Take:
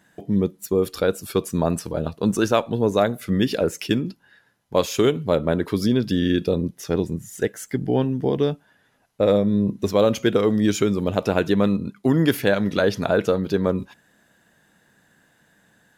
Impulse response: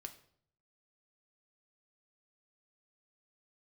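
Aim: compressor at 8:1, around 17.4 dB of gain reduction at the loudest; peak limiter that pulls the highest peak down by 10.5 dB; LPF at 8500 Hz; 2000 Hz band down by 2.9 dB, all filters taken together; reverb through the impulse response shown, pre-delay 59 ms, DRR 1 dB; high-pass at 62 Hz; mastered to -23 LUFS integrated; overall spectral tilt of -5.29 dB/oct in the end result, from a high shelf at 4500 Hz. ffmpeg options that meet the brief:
-filter_complex "[0:a]highpass=62,lowpass=8.5k,equalizer=f=2k:t=o:g=-5,highshelf=f=4.5k:g=5,acompressor=threshold=-33dB:ratio=8,alimiter=level_in=4dB:limit=-24dB:level=0:latency=1,volume=-4dB,asplit=2[a][b];[1:a]atrim=start_sample=2205,adelay=59[c];[b][c]afir=irnorm=-1:irlink=0,volume=3.5dB[d];[a][d]amix=inputs=2:normalize=0,volume=14.5dB"

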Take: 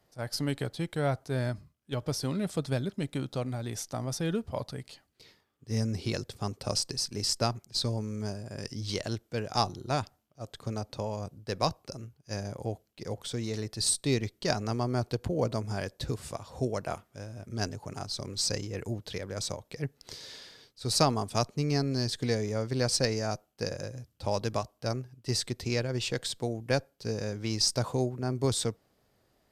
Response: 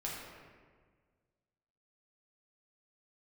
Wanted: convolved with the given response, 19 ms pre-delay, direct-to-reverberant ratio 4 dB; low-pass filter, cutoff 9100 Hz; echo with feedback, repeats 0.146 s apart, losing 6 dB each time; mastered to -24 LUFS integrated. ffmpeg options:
-filter_complex "[0:a]lowpass=9.1k,aecho=1:1:146|292|438|584|730|876:0.501|0.251|0.125|0.0626|0.0313|0.0157,asplit=2[a][b];[1:a]atrim=start_sample=2205,adelay=19[c];[b][c]afir=irnorm=-1:irlink=0,volume=-6dB[d];[a][d]amix=inputs=2:normalize=0,volume=5.5dB"

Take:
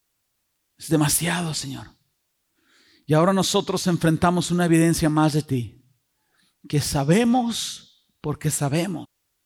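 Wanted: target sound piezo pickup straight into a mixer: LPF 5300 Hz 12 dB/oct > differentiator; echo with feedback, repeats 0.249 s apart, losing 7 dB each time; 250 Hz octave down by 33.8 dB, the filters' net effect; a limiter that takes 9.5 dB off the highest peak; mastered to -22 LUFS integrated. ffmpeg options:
-af "equalizer=f=250:t=o:g=-8,alimiter=limit=-16.5dB:level=0:latency=1,lowpass=5.3k,aderivative,aecho=1:1:249|498|747|996|1245:0.447|0.201|0.0905|0.0407|0.0183,volume=16.5dB"

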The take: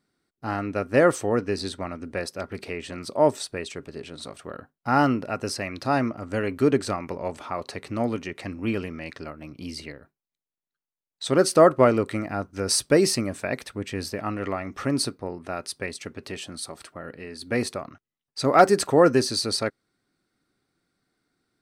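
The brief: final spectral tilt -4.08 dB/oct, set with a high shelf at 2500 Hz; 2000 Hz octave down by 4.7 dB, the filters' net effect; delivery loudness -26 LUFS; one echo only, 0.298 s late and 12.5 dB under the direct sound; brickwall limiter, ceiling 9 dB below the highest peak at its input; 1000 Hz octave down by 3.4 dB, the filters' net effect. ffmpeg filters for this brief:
-af "equalizer=f=1k:t=o:g=-4,equalizer=f=2k:t=o:g=-6.5,highshelf=f=2.5k:g=4,alimiter=limit=-14dB:level=0:latency=1,aecho=1:1:298:0.237,volume=2dB"

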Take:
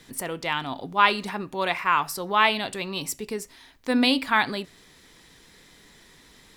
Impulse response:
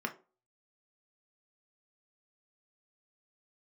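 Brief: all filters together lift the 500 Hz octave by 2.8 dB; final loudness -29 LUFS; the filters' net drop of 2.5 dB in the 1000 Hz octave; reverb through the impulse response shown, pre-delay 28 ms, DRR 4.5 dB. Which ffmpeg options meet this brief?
-filter_complex "[0:a]equalizer=f=500:t=o:g=4.5,equalizer=f=1k:t=o:g=-4,asplit=2[a][b];[1:a]atrim=start_sample=2205,adelay=28[c];[b][c]afir=irnorm=-1:irlink=0,volume=-8.5dB[d];[a][d]amix=inputs=2:normalize=0,volume=-5.5dB"

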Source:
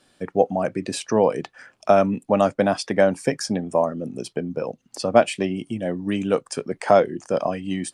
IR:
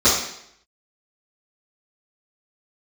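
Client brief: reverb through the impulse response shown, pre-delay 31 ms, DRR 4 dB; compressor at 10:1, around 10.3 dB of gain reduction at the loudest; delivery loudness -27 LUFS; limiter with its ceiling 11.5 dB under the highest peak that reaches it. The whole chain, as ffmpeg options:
-filter_complex "[0:a]acompressor=threshold=-20dB:ratio=10,alimiter=limit=-19dB:level=0:latency=1,asplit=2[a][b];[1:a]atrim=start_sample=2205,adelay=31[c];[b][c]afir=irnorm=-1:irlink=0,volume=-25dB[d];[a][d]amix=inputs=2:normalize=0,volume=2dB"

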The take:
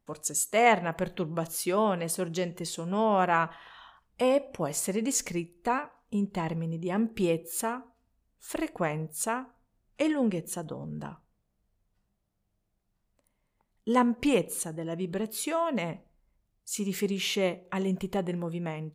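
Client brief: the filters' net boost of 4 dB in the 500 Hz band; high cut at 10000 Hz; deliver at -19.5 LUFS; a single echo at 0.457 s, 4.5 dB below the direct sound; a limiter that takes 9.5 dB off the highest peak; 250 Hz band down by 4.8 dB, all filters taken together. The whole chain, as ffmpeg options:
-af "lowpass=10k,equalizer=f=250:t=o:g=-9,equalizer=f=500:t=o:g=7,alimiter=limit=-17dB:level=0:latency=1,aecho=1:1:457:0.596,volume=10dB"

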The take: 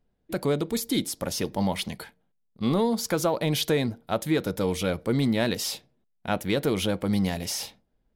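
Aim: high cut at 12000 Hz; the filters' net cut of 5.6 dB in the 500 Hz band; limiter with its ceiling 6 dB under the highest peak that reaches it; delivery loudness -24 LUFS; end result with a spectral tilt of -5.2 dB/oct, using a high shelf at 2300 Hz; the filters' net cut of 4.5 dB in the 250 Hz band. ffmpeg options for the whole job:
-af "lowpass=12k,equalizer=f=250:t=o:g=-4.5,equalizer=f=500:t=o:g=-5,highshelf=f=2.3k:g=-8.5,volume=10dB,alimiter=limit=-13dB:level=0:latency=1"

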